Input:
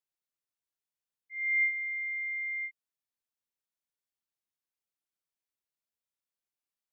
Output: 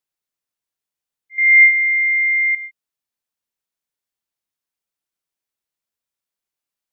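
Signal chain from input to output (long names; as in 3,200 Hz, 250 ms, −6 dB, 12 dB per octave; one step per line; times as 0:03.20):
0:01.38–0:02.55: parametric band 2,000 Hz +13 dB 1.3 octaves
level +5.5 dB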